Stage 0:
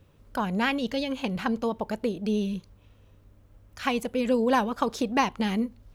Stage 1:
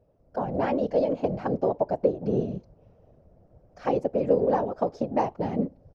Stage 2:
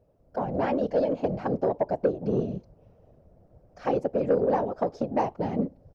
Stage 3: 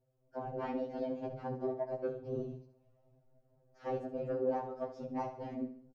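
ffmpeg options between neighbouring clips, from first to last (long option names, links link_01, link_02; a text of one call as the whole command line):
ffmpeg -i in.wav -af "firequalizer=gain_entry='entry(200,0);entry(630,13);entry(1000,-4);entry(3500,-18);entry(5200,-7);entry(7500,-20);entry(11000,-29)':delay=0.05:min_phase=1,dynaudnorm=framelen=280:gausssize=3:maxgain=8dB,afftfilt=real='hypot(re,im)*cos(2*PI*random(0))':imag='hypot(re,im)*sin(2*PI*random(1))':win_size=512:overlap=0.75,volume=-3.5dB" out.wav
ffmpeg -i in.wav -af "asoftclip=type=tanh:threshold=-12.5dB" out.wav
ffmpeg -i in.wav -filter_complex "[0:a]flanger=delay=8.6:depth=4.5:regen=-62:speed=0.96:shape=sinusoidal,asplit=2[link_01][link_02];[link_02]aecho=0:1:70|140|210|280:0.282|0.116|0.0474|0.0194[link_03];[link_01][link_03]amix=inputs=2:normalize=0,afftfilt=real='re*2.45*eq(mod(b,6),0)':imag='im*2.45*eq(mod(b,6),0)':win_size=2048:overlap=0.75,volume=-5.5dB" out.wav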